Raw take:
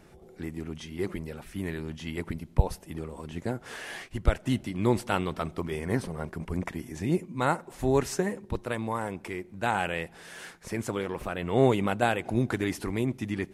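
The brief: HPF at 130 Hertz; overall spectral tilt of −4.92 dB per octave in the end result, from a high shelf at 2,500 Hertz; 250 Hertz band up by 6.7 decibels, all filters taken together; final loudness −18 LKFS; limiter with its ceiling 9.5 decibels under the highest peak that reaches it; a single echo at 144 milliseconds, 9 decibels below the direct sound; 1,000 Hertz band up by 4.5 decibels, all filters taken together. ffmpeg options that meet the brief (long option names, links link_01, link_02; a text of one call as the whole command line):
ffmpeg -i in.wav -af "highpass=130,equalizer=frequency=250:width_type=o:gain=8.5,equalizer=frequency=1000:width_type=o:gain=6.5,highshelf=frequency=2500:gain=-7,alimiter=limit=-14dB:level=0:latency=1,aecho=1:1:144:0.355,volume=10.5dB" out.wav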